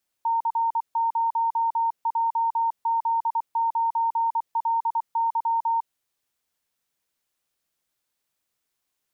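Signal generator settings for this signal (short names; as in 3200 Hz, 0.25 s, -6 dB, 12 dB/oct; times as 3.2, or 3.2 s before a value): Morse "C0JZ9LY" 24 wpm 917 Hz -20 dBFS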